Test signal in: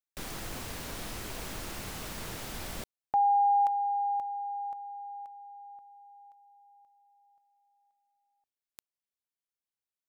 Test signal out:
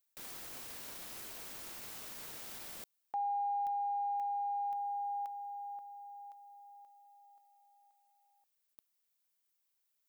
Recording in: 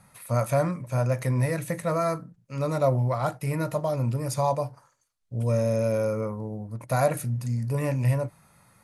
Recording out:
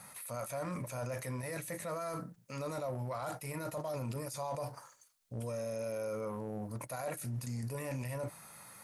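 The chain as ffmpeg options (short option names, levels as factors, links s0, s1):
-af "aemphasis=mode=production:type=bsi,areverse,acompressor=threshold=0.0126:ratio=8:attack=0.19:release=58:knee=1:detection=peak,areverse,highshelf=f=8600:g=-10.5,volume=1.68"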